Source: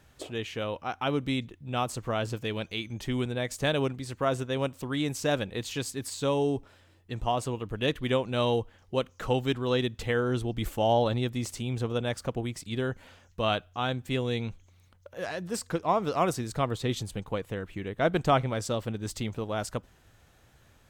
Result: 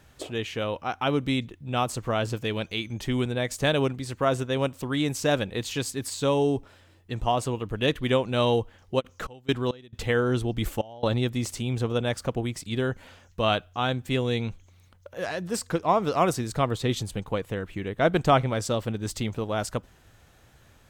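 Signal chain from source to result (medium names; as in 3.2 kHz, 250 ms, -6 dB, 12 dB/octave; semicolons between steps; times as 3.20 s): 8.99–11.20 s: trance gate ".xxxx.x.x.x" 68 bpm -24 dB; trim +3.5 dB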